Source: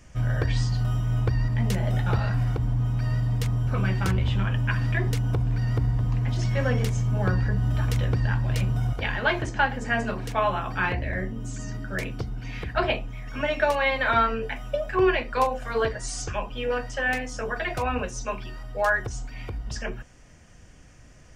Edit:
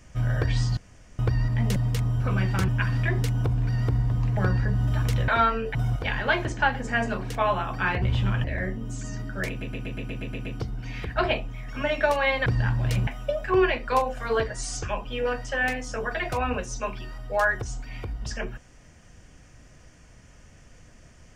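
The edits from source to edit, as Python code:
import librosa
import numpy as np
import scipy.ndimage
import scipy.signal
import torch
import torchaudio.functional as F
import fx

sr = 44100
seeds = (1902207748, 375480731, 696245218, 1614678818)

y = fx.edit(x, sr, fx.room_tone_fill(start_s=0.77, length_s=0.42),
    fx.cut(start_s=1.76, length_s=1.47),
    fx.move(start_s=4.15, length_s=0.42, to_s=10.99),
    fx.cut(start_s=6.26, length_s=0.94),
    fx.swap(start_s=8.11, length_s=0.61, other_s=14.05, other_length_s=0.47),
    fx.stutter(start_s=12.04, slice_s=0.12, count=9), tone=tone)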